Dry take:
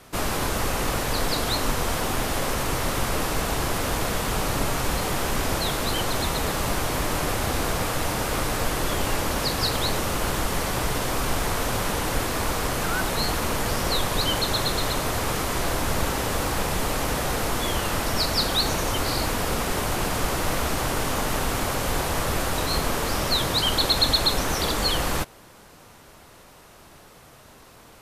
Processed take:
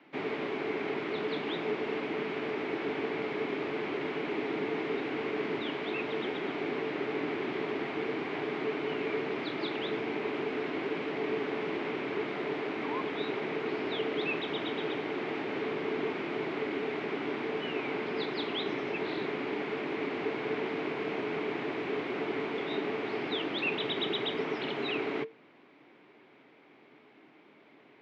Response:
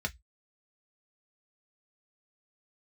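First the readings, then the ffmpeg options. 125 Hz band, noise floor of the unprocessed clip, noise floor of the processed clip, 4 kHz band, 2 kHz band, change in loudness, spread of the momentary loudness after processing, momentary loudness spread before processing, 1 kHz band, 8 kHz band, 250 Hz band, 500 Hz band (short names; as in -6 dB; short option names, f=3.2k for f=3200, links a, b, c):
-18.5 dB, -49 dBFS, -59 dBFS, -14.0 dB, -7.0 dB, -9.0 dB, 2 LU, 3 LU, -11.5 dB, under -35 dB, -4.5 dB, -3.0 dB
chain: -af "afreqshift=-450,highpass=f=160:w=0.5412,highpass=f=160:w=1.3066,equalizer=f=190:t=q:w=4:g=-6,equalizer=f=290:t=q:w=4:g=5,equalizer=f=2.2k:t=q:w=4:g=8,lowpass=f=3.2k:w=0.5412,lowpass=f=3.2k:w=1.3066,volume=-9dB"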